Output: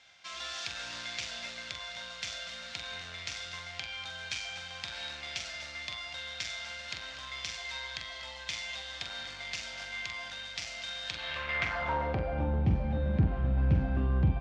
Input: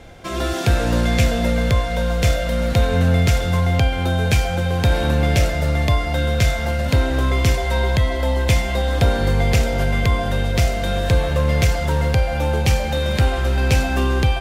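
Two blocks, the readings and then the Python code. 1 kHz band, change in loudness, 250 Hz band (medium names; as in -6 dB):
-15.5 dB, -15.5 dB, -16.0 dB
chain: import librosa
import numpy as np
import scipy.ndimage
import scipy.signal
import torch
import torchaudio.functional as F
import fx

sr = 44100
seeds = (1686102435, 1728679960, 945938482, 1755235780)

p1 = fx.peak_eq(x, sr, hz=400.0, db=-14.0, octaves=1.1)
p2 = 10.0 ** (-14.0 / 20.0) * np.tanh(p1 / 10.0 ** (-14.0 / 20.0))
p3 = fx.doubler(p2, sr, ms=44.0, db=-7)
p4 = p3 + fx.echo_single(p3, sr, ms=243, db=-13.5, dry=0)
p5 = fx.filter_sweep_bandpass(p4, sr, from_hz=6000.0, to_hz=220.0, start_s=11.02, end_s=12.56, q=1.1)
p6 = fx.air_absorb(p5, sr, metres=150.0)
y = p6 * librosa.db_to_amplitude(1.5)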